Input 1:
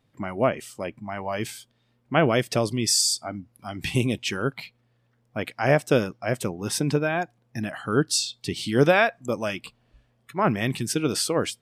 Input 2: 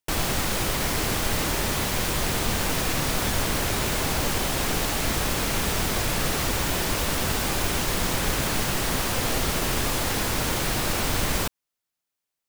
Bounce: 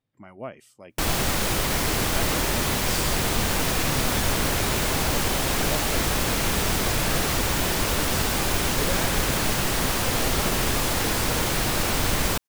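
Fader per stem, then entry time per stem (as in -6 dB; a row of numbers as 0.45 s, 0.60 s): -14.0 dB, +1.5 dB; 0.00 s, 0.90 s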